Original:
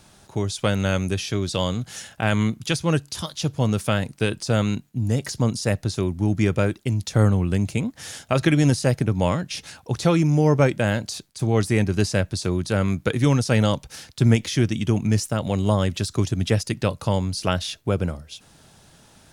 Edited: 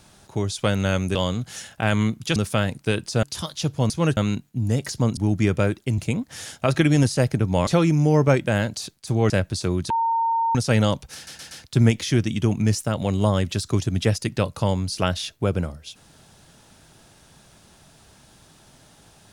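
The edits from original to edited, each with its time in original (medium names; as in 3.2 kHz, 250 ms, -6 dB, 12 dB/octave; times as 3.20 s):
1.15–1.55 s: delete
2.76–3.03 s: swap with 3.70–4.57 s
5.57–6.16 s: delete
6.97–7.65 s: delete
9.34–9.99 s: delete
11.62–12.11 s: delete
12.71–13.36 s: bleep 915 Hz -18.5 dBFS
13.96 s: stutter 0.12 s, 4 plays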